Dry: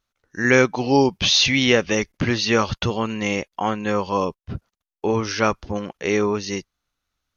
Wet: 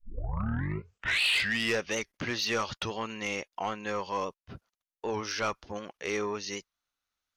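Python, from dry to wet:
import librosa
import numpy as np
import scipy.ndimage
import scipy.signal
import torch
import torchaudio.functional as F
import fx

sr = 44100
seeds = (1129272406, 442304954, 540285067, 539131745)

y = fx.tape_start_head(x, sr, length_s=1.83)
y = fx.low_shelf(y, sr, hz=350.0, db=-11.5)
y = 10.0 ** (-15.5 / 20.0) * np.tanh(y / 10.0 ** (-15.5 / 20.0))
y = fx.record_warp(y, sr, rpm=78.0, depth_cents=100.0)
y = y * librosa.db_to_amplitude(-6.0)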